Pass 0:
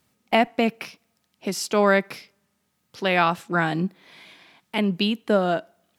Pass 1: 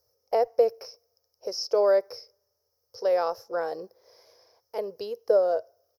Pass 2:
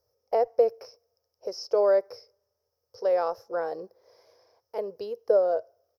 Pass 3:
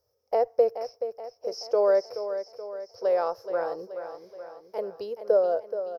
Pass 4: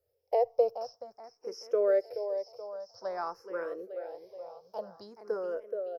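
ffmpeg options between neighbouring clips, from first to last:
-filter_complex "[0:a]firequalizer=gain_entry='entry(110,0);entry(150,-26);entry(270,-21);entry(480,14);entry(710,-1);entry(2500,-21);entry(3600,-19);entry(5300,14);entry(8000,-21);entry(12000,5)':delay=0.05:min_phase=1,acrossover=split=5400[s0][s1];[s1]acompressor=threshold=0.00562:ratio=4:attack=1:release=60[s2];[s0][s2]amix=inputs=2:normalize=0,volume=0.531"
-af "highshelf=f=2800:g=-8.5"
-af "aecho=1:1:427|854|1281|1708|2135|2562:0.316|0.168|0.0888|0.0471|0.025|0.0132"
-filter_complex "[0:a]asplit=2[s0][s1];[s1]afreqshift=0.51[s2];[s0][s2]amix=inputs=2:normalize=1,volume=0.794"

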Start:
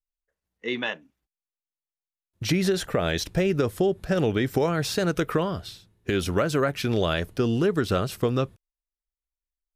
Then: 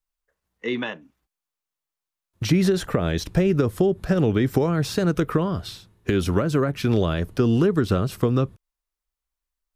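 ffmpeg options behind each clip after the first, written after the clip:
-filter_complex "[0:a]equalizer=f=1100:w=1.7:g=5,acrossover=split=390[s0][s1];[s1]acompressor=threshold=0.0158:ratio=3[s2];[s0][s2]amix=inputs=2:normalize=0,volume=1.88"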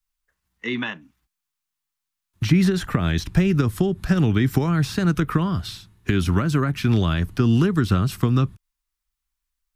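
-filter_complex "[0:a]acrossover=split=160|2700[s0][s1][s2];[s2]alimiter=level_in=1.88:limit=0.0631:level=0:latency=1:release=209,volume=0.531[s3];[s0][s1][s3]amix=inputs=3:normalize=0,equalizer=f=510:w=1.3:g=-14,volume=1.68"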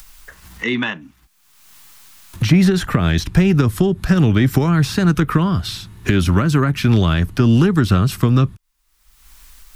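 -filter_complex "[0:a]asplit=2[s0][s1];[s1]asoftclip=type=tanh:threshold=0.168,volume=0.708[s2];[s0][s2]amix=inputs=2:normalize=0,acompressor=mode=upward:threshold=0.1:ratio=2.5,volume=1.19"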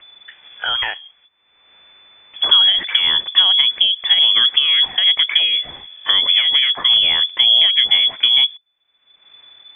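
-af "lowpass=f=3000:t=q:w=0.5098,lowpass=f=3000:t=q:w=0.6013,lowpass=f=3000:t=q:w=0.9,lowpass=f=3000:t=q:w=2.563,afreqshift=-3500"

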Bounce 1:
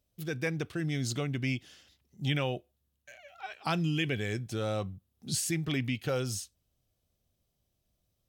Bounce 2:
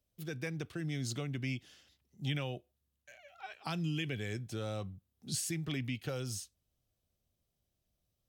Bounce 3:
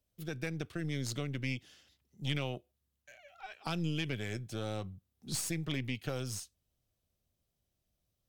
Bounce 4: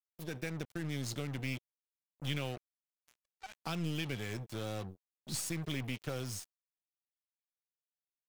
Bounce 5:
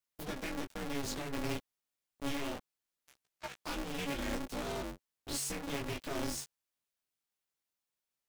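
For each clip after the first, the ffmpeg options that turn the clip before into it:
-filter_complex "[0:a]acrossover=split=220|3000[s0][s1][s2];[s1]acompressor=threshold=0.0178:ratio=2.5[s3];[s0][s3][s2]amix=inputs=3:normalize=0,volume=0.596"
-af "aeval=exprs='0.0794*(cos(1*acos(clip(val(0)/0.0794,-1,1)))-cos(1*PI/2))+0.0126*(cos(4*acos(clip(val(0)/0.0794,-1,1)))-cos(4*PI/2))':c=same"
-af "acrusher=bits=6:mix=0:aa=0.5,volume=0.794"
-af "asoftclip=type=tanh:threshold=0.0112,flanger=delay=15:depth=7:speed=0.63,aeval=exprs='val(0)*sgn(sin(2*PI*140*n/s))':c=same,volume=2.82"

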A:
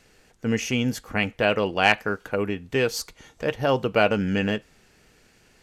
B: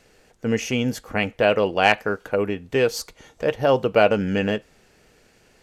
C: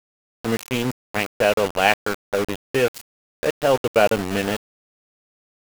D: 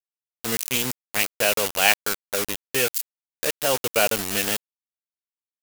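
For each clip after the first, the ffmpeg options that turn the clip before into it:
-af "equalizer=f=550:t=o:w=1.2:g=5"
-af "aeval=exprs='val(0)*gte(abs(val(0)),0.0794)':c=same"
-af "crystalizer=i=7.5:c=0,volume=0.398"

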